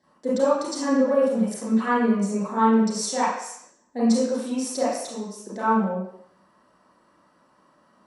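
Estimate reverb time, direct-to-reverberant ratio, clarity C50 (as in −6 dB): 0.70 s, −10.5 dB, −0.5 dB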